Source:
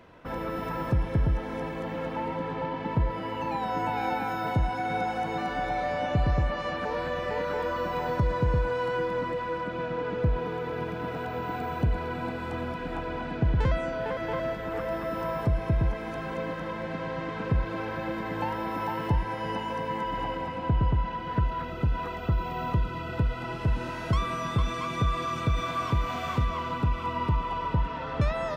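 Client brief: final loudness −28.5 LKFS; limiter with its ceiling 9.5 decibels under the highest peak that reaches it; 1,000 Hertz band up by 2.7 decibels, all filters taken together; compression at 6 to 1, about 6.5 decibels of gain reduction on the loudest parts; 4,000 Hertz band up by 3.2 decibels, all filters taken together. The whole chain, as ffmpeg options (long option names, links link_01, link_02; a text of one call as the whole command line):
ffmpeg -i in.wav -af "equalizer=frequency=1000:width_type=o:gain=3,equalizer=frequency=4000:width_type=o:gain=4,acompressor=threshold=-27dB:ratio=6,volume=6dB,alimiter=limit=-20dB:level=0:latency=1" out.wav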